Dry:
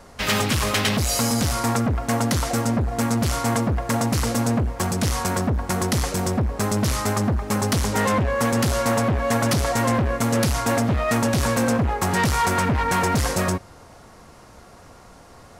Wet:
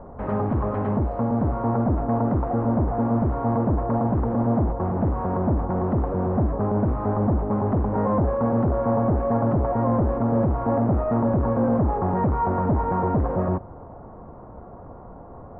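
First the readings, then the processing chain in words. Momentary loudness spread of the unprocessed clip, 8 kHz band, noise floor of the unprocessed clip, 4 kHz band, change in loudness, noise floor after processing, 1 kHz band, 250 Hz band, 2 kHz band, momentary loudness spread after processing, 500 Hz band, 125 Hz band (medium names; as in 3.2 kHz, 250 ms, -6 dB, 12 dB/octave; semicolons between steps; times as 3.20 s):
3 LU, under -40 dB, -47 dBFS, under -35 dB, -1.5 dB, -42 dBFS, -1.5 dB, +0.5 dB, -17.0 dB, 19 LU, +1.0 dB, 0.0 dB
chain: in parallel at +0.5 dB: integer overflow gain 24 dB; on the sum: low-pass 1 kHz 24 dB/octave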